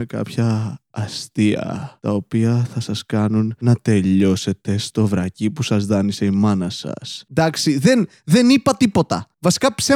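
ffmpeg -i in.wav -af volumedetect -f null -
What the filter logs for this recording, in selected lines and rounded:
mean_volume: -18.0 dB
max_volume: -2.7 dB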